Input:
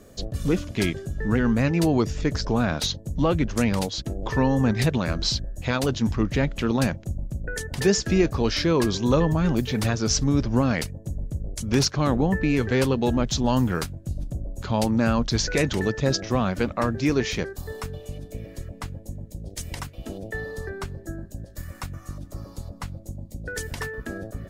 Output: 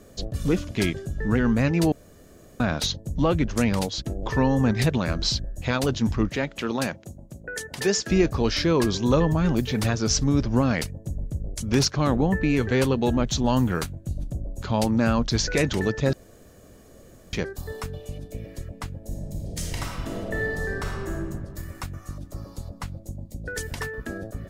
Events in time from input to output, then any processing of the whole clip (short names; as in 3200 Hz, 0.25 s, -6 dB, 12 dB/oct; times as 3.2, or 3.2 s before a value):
1.92–2.6 room tone
6.29–8.11 HPF 350 Hz 6 dB/oct
12.13–14.29 notch 5100 Hz
16.13–17.33 room tone
18.97–21.29 reverb throw, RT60 1.8 s, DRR -2.5 dB